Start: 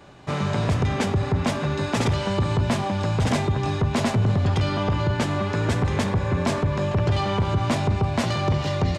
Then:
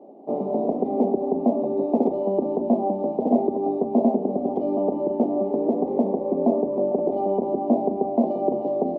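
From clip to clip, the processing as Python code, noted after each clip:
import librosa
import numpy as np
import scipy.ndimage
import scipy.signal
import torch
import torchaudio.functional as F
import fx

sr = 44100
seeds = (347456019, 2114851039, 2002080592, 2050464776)

y = scipy.signal.sosfilt(scipy.signal.ellip(3, 1.0, 40, [230.0, 740.0], 'bandpass', fs=sr, output='sos'), x)
y = y * librosa.db_to_amplitude(6.5)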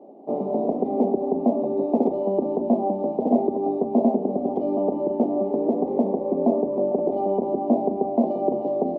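y = x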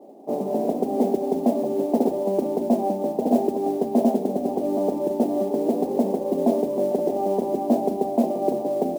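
y = fx.mod_noise(x, sr, seeds[0], snr_db=28)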